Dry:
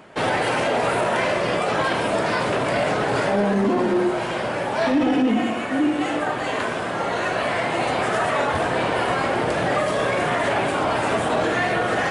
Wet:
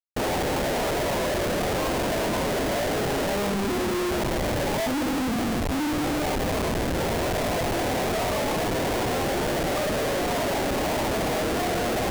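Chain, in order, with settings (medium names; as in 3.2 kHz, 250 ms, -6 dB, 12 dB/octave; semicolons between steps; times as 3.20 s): Butterworth band-pass 470 Hz, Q 0.52; loudest bins only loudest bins 32; Schmitt trigger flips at -27.5 dBFS; trim -2 dB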